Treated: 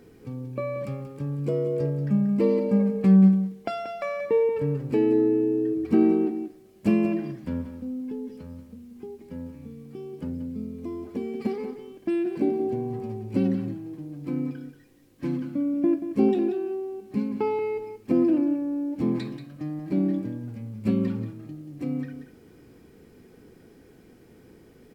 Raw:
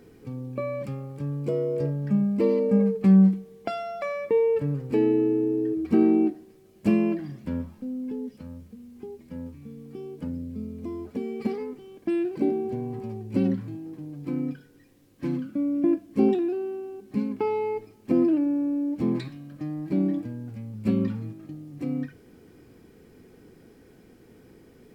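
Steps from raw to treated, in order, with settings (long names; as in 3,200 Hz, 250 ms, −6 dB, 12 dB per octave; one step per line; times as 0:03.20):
single-tap delay 183 ms −10.5 dB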